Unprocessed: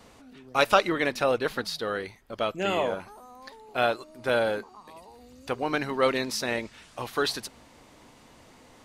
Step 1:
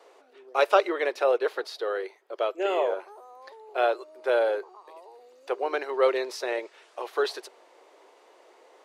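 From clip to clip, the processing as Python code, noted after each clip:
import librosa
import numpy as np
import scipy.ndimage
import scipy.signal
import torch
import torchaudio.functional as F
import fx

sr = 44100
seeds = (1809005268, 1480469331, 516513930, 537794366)

y = scipy.signal.sosfilt(scipy.signal.cheby1(5, 1.0, 370.0, 'highpass', fs=sr, output='sos'), x)
y = fx.tilt_eq(y, sr, slope=-3.0)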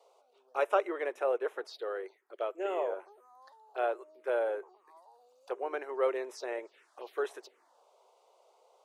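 y = fx.env_phaser(x, sr, low_hz=260.0, high_hz=4500.0, full_db=-27.0)
y = y * 10.0 ** (-7.0 / 20.0)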